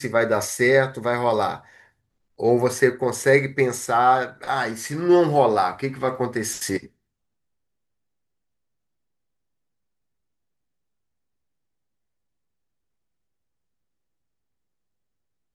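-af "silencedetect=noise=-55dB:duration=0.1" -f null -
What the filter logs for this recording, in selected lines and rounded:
silence_start: 1.90
silence_end: 2.38 | silence_duration: 0.49
silence_start: 6.90
silence_end: 15.55 | silence_duration: 8.65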